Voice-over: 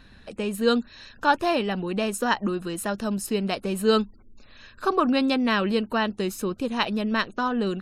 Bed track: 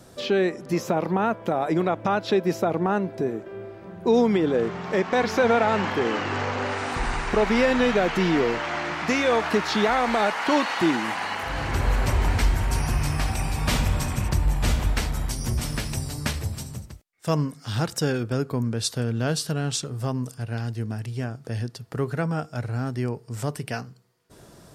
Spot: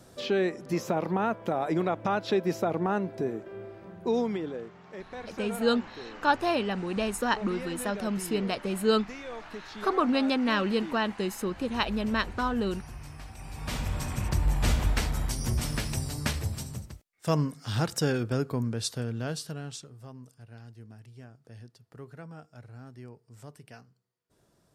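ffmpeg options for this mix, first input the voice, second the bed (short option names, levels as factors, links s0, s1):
-filter_complex "[0:a]adelay=5000,volume=0.668[s0];[1:a]volume=3.98,afade=t=out:st=3.78:d=0.92:silence=0.188365,afade=t=in:st=13.36:d=1.23:silence=0.149624,afade=t=out:st=18.27:d=1.72:silence=0.158489[s1];[s0][s1]amix=inputs=2:normalize=0"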